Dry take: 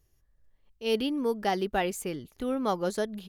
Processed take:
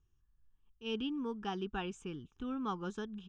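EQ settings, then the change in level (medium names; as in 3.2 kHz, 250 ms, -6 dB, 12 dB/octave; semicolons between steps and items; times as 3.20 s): distance through air 130 m; static phaser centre 3 kHz, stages 8; -4.5 dB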